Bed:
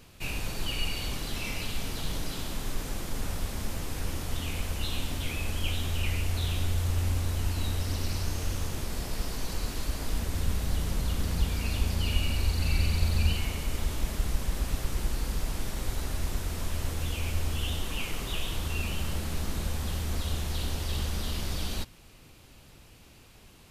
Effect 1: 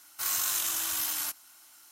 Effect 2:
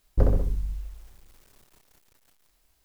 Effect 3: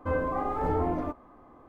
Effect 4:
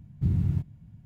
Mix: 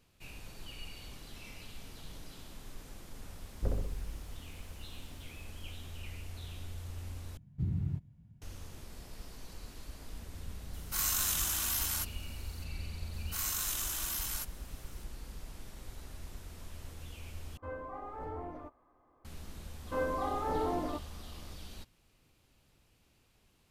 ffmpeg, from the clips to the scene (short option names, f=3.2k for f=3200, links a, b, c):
-filter_complex "[1:a]asplit=2[a][b];[3:a]asplit=2[c][d];[0:a]volume=-15dB[e];[c]equalizer=f=200:t=o:w=1.1:g=-7[f];[d]equalizer=f=100:t=o:w=1.3:g=-11.5[g];[e]asplit=3[h][i][j];[h]atrim=end=7.374[k];[4:a]atrim=end=1.05,asetpts=PTS-STARTPTS,volume=-8.5dB[l];[i]atrim=start=8.416:end=17.574[m];[f]atrim=end=1.68,asetpts=PTS-STARTPTS,volume=-13dB[n];[j]atrim=start=19.246[o];[2:a]atrim=end=2.84,asetpts=PTS-STARTPTS,volume=-12.5dB,afade=t=in:d=0.004:c=hsin,afade=t=out:st=2.836:d=0.004:c=hsin,adelay=152145S[p];[a]atrim=end=1.91,asetpts=PTS-STARTPTS,volume=-2.5dB,afade=t=in:d=0.004:c=hsin,afade=t=out:st=1.906:d=0.004:c=hsin,adelay=10730[q];[b]atrim=end=1.91,asetpts=PTS-STARTPTS,volume=-6dB,afade=t=in:d=0.004:c=hsin,afade=t=out:st=1.906:d=0.004:c=hsin,adelay=13130[r];[g]atrim=end=1.68,asetpts=PTS-STARTPTS,volume=-4dB,afade=t=in:d=0.004:c=hsin,afade=t=out:st=1.676:d=0.004:c=hsin,adelay=19860[s];[k][l]acrossfade=d=0.004:c1=hsin:c2=hsin[t];[t][m]acrossfade=d=0.004:c1=hsin:c2=hsin[u];[u][n]acrossfade=d=0.004:c1=hsin:c2=hsin[v];[v][o]acrossfade=d=0.004:c1=hsin:c2=hsin[w];[w][p][q][r][s]amix=inputs=5:normalize=0"